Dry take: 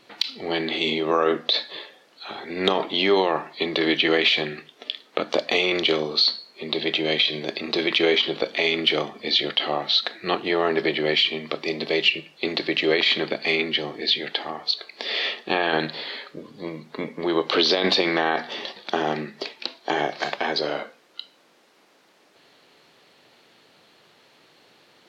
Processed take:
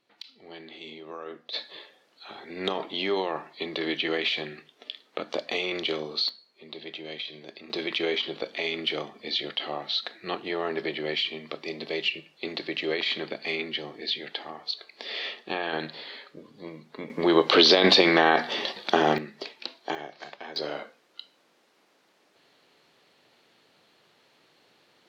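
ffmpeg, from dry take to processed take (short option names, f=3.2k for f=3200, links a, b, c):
-af "asetnsamples=n=441:p=0,asendcmd='1.53 volume volume -8dB;6.29 volume volume -15.5dB;7.7 volume volume -8dB;17.1 volume volume 2.5dB;19.18 volume volume -6dB;19.95 volume volume -15.5dB;20.56 volume volume -6.5dB',volume=-19dB"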